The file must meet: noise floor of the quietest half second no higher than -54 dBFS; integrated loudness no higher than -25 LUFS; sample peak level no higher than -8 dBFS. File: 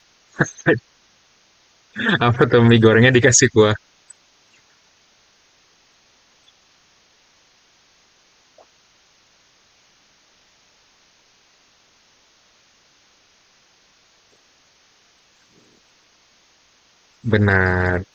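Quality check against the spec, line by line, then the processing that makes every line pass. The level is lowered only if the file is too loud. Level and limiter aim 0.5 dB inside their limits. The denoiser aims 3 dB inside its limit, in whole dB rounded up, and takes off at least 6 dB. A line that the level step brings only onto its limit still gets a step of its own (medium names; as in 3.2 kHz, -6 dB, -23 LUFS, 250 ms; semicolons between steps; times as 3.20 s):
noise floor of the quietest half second -57 dBFS: pass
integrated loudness -15.5 LUFS: fail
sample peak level -2.5 dBFS: fail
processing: trim -10 dB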